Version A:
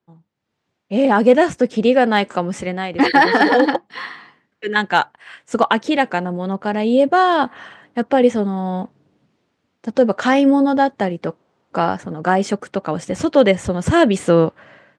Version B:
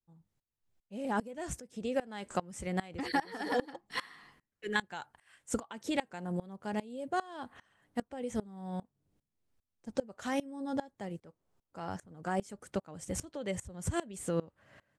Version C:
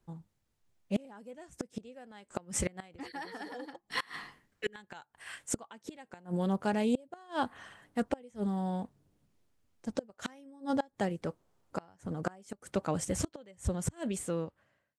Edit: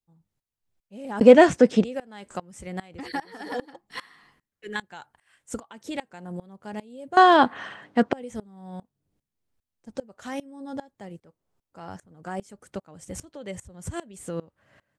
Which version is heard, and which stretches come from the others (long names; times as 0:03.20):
B
0:01.21–0:01.84: punch in from A
0:07.17–0:08.13: punch in from A
not used: C